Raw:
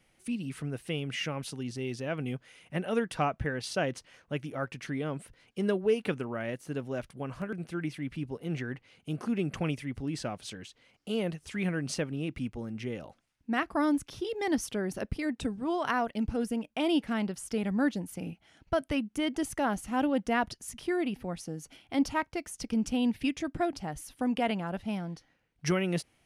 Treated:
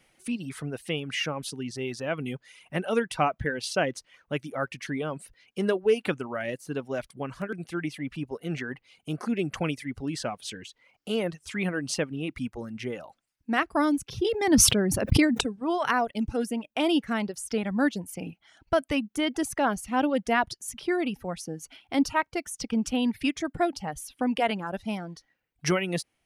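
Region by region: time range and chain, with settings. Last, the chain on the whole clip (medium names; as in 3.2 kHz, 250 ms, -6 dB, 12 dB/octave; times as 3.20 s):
14.07–15.41 s: peaking EQ 91 Hz +13.5 dB 2.5 oct + decay stretcher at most 35 dB/s
whole clip: reverb removal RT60 0.76 s; bass shelf 200 Hz -6.5 dB; trim +5.5 dB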